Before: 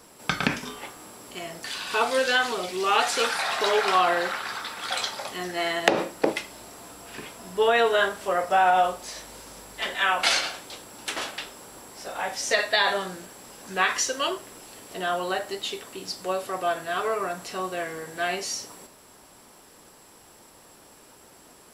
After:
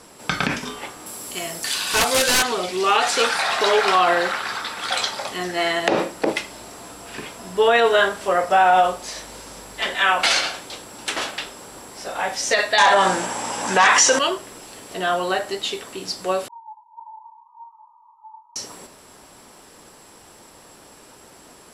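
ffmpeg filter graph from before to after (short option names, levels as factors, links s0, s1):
-filter_complex "[0:a]asettb=1/sr,asplit=3[s0][s1][s2];[s0]atrim=end=1.064[s3];[s1]atrim=start=1.06:end=2.43,asetpts=PTS-STARTPTS,afade=t=in:d=0.004:c=qsin,afade=t=out:st=1.366:d=0.004:c=qsin,aemphasis=mode=production:type=50fm,aeval=exprs='(mod(5.96*val(0)+1,2)-1)/5.96':c=same[s4];[s2]atrim=start=2.426[s5];[s3][s4]acrossfade=d=0.004:c1=hsin:c2=qsin[s6];[s6][s5]acrossfade=d=0.004:c1=qsin:c2=hsin,asettb=1/sr,asplit=3[s7][s8][s9];[s7]atrim=end=12.784[s10];[s8]atrim=start=12.78:end=14.19,asetpts=PTS-STARTPTS,afade=t=in:d=0.004:c=qsin,afade=t=out:st=1.406:d=0.004:c=qsin,aeval=exprs='0.422*sin(PI/2*2.82*val(0)/0.422)':c=same,aeval=exprs='val(0)+0.0178*(sin(2*PI*60*n/s)+sin(2*PI*2*60*n/s)/2+sin(2*PI*3*60*n/s)/3+sin(2*PI*4*60*n/s)/4+sin(2*PI*5*60*n/s)/5)':c=same,highpass=270,equalizer=f=390:t=q:w=4:g=-6,equalizer=f=890:t=q:w=4:g=8,equalizer=f=4300:t=q:w=4:g=-6,lowpass=f=9500:w=0.5412,lowpass=f=9500:w=1.3066[s11];[s9]atrim=start=14.186[s12];[s10][s11]acrossfade=d=0.004:c1=hsin:c2=qsin[s13];[s13][s12]acrossfade=d=0.004:c1=qsin:c2=hsin,asettb=1/sr,asplit=3[s14][s15][s16];[s14]atrim=end=16.484[s17];[s15]atrim=start=16.48:end=18.56,asetpts=PTS-STARTPTS,afade=t=in:d=0.004:c=qsin,afade=t=out:st=2.076:d=0.004:c=qsin,asuperpass=centerf=910:order=12:qfactor=7.8,asplit=6[s18][s19][s20][s21][s22][s23];[s19]adelay=239,afreqshift=69,volume=0.0891[s24];[s20]adelay=478,afreqshift=138,volume=0.0562[s25];[s21]adelay=717,afreqshift=207,volume=0.0355[s26];[s22]adelay=956,afreqshift=276,volume=0.0224[s27];[s23]adelay=1195,afreqshift=345,volume=0.014[s28];[s18][s24][s25][s26][s27][s28]amix=inputs=6:normalize=0,atrim=end_sample=91728[s29];[s16]atrim=start=18.556[s30];[s17][s29]acrossfade=d=0.004:c1=hsin:c2=qsin[s31];[s31][s30]acrossfade=d=0.004:c1=qsin:c2=hsin,lowpass=11000,alimiter=level_in=3.55:limit=0.891:release=50:level=0:latency=1,volume=0.531"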